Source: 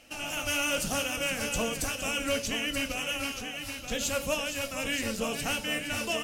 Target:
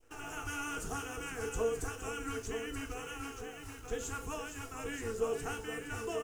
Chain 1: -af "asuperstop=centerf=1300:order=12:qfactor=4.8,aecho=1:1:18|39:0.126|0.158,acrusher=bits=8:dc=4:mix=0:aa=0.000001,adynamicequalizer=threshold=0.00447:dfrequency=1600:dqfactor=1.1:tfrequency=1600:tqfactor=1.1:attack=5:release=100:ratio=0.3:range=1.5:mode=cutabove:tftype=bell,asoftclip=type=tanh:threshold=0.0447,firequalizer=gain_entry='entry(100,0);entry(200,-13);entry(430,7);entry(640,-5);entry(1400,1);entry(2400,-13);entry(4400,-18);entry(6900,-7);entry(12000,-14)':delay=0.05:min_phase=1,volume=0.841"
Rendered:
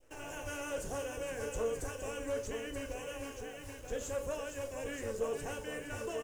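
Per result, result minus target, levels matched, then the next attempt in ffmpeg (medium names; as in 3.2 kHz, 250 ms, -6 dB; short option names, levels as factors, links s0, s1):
saturation: distortion +13 dB; 1 kHz band -3.5 dB
-af "asuperstop=centerf=1300:order=12:qfactor=4.8,aecho=1:1:18|39:0.126|0.158,acrusher=bits=8:dc=4:mix=0:aa=0.000001,adynamicequalizer=threshold=0.00447:dfrequency=1600:dqfactor=1.1:tfrequency=1600:tqfactor=1.1:attack=5:release=100:ratio=0.3:range=1.5:mode=cutabove:tftype=bell,asoftclip=type=tanh:threshold=0.112,firequalizer=gain_entry='entry(100,0);entry(200,-13);entry(430,7);entry(640,-5);entry(1400,1);entry(2400,-13);entry(4400,-18);entry(6900,-7);entry(12000,-14)':delay=0.05:min_phase=1,volume=0.841"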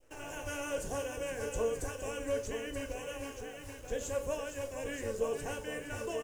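1 kHz band -3.5 dB
-af "asuperstop=centerf=560:order=12:qfactor=4.8,aecho=1:1:18|39:0.126|0.158,acrusher=bits=8:dc=4:mix=0:aa=0.000001,adynamicequalizer=threshold=0.00447:dfrequency=1600:dqfactor=1.1:tfrequency=1600:tqfactor=1.1:attack=5:release=100:ratio=0.3:range=1.5:mode=cutabove:tftype=bell,asoftclip=type=tanh:threshold=0.112,firequalizer=gain_entry='entry(100,0);entry(200,-13);entry(430,7);entry(640,-5);entry(1400,1);entry(2400,-13);entry(4400,-18);entry(6900,-7);entry(12000,-14)':delay=0.05:min_phase=1,volume=0.841"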